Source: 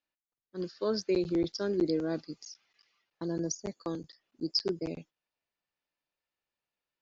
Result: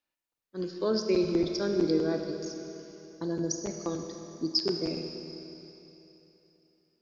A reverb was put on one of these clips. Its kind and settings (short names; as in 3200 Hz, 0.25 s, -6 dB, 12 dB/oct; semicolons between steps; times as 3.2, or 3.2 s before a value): Schroeder reverb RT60 3.3 s, combs from 25 ms, DRR 4.5 dB; gain +2 dB